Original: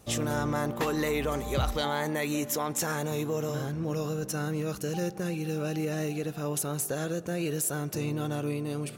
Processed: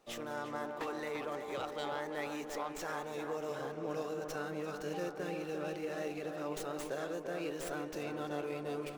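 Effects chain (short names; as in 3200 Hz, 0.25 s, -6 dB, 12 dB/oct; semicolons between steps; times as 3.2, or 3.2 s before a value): Bessel high-pass 440 Hz, order 2; high shelf 5300 Hz -11 dB; vocal rider 0.5 s; tape echo 0.344 s, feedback 82%, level -4 dB, low-pass 1500 Hz; running maximum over 3 samples; gain -5.5 dB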